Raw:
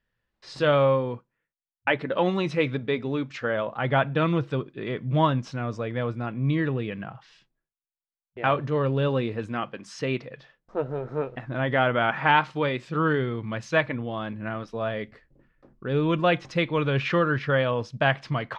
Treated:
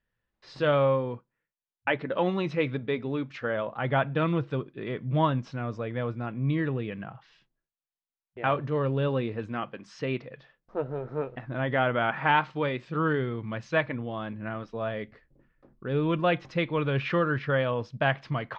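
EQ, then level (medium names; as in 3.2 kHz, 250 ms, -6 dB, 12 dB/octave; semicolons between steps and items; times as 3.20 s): distance through air 110 m; -2.5 dB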